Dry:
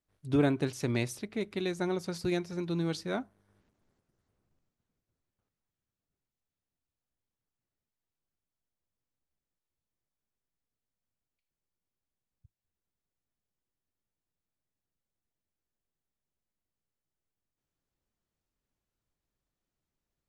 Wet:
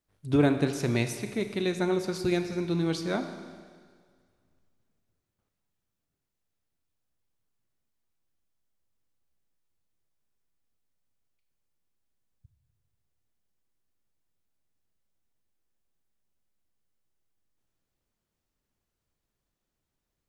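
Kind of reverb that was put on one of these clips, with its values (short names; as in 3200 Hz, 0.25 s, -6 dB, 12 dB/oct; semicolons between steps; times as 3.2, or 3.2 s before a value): Schroeder reverb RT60 1.8 s, combs from 27 ms, DRR 8 dB; gain +3.5 dB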